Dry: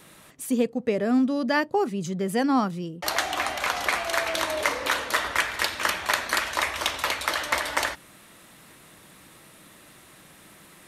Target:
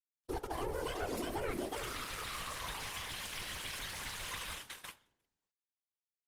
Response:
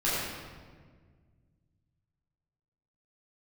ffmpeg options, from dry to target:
-filter_complex "[0:a]acontrast=57,aecho=1:1:624|1248|1872:0.398|0.0955|0.0229,aresample=16000,acrusher=bits=4:mix=0:aa=0.000001,aresample=44100,agate=range=-33dB:threshold=-20dB:ratio=3:detection=peak,aeval=exprs='(tanh(5.01*val(0)+0.7)-tanh(0.7))/5.01':c=same,acompressor=threshold=-23dB:ratio=6,asplit=2[a][b];[1:a]atrim=start_sample=2205,asetrate=70560,aresample=44100[c];[b][c]afir=irnorm=-1:irlink=0,volume=-22dB[d];[a][d]amix=inputs=2:normalize=0,alimiter=limit=-21.5dB:level=0:latency=1:release=39,asetrate=76440,aresample=44100,afftfilt=real='hypot(re,im)*cos(2*PI*random(0))':imag='hypot(re,im)*sin(2*PI*random(1))':win_size=512:overlap=0.75,volume=-1.5dB" -ar 48000 -c:a libopus -b:a 32k

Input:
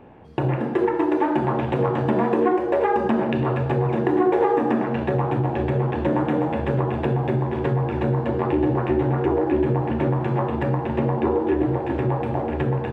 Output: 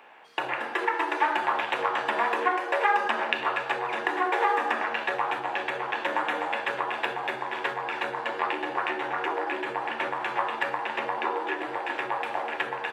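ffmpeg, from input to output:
-af "highpass=1.4k,volume=8.5dB"

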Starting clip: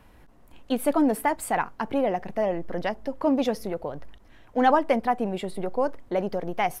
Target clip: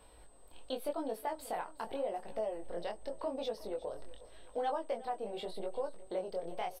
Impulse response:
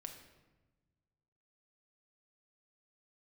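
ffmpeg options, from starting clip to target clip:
-af "equalizer=f=125:t=o:w=1:g=-10,equalizer=f=250:t=o:w=1:g=-7,equalizer=f=500:t=o:w=1:g=6,equalizer=f=2k:t=o:w=1:g=-6,equalizer=f=4k:t=o:w=1:g=10,equalizer=f=8k:t=o:w=1:g=-8,acompressor=threshold=-35dB:ratio=2.5,flanger=delay=18:depth=6:speed=0.85,aeval=exprs='val(0)+0.000562*sin(2*PI*8200*n/s)':c=same,aecho=1:1:364|728|1092|1456:0.119|0.0547|0.0251|0.0116,volume=-1.5dB"

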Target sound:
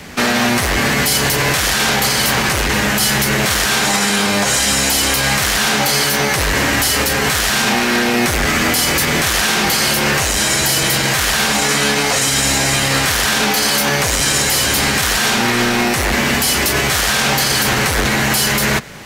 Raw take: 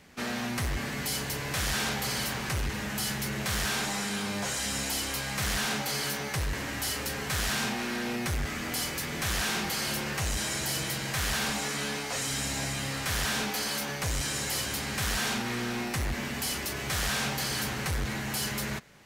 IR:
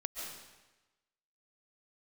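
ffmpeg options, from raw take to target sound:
-filter_complex "[0:a]acrossover=split=310|610|1900[a][b][c][d];[a]asoftclip=type=tanh:threshold=-39dB[e];[e][b][c][d]amix=inputs=4:normalize=0,alimiter=level_in=27dB:limit=-1dB:release=50:level=0:latency=1,volume=-5dB"

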